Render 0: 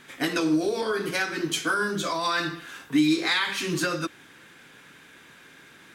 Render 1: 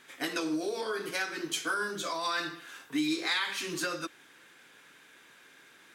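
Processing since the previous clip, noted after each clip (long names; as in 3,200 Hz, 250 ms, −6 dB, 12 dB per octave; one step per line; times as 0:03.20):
bass and treble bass −10 dB, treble +2 dB
level −6 dB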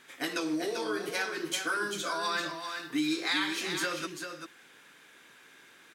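single-tap delay 392 ms −7 dB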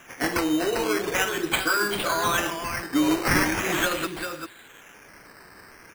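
sample-and-hold swept by an LFO 10×, swing 60% 0.41 Hz
level +8 dB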